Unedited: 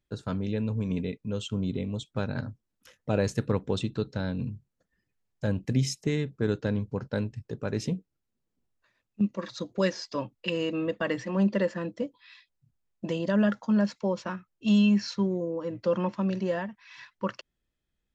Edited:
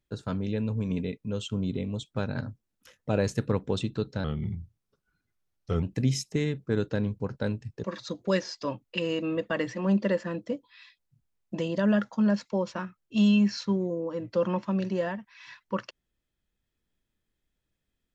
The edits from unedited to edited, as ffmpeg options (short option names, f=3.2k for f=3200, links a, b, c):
-filter_complex "[0:a]asplit=4[a][b][c][d];[a]atrim=end=4.244[e];[b]atrim=start=4.24:end=5.54,asetpts=PTS-STARTPTS,asetrate=36162,aresample=44100[f];[c]atrim=start=5.536:end=7.552[g];[d]atrim=start=9.338[h];[e][f]acrossfade=d=0.004:c1=hsin:c2=hsin[i];[i][g]acrossfade=d=0.004:c1=hsin:c2=hsin[j];[j][h]acrossfade=d=0.004:c1=hsin:c2=hsin"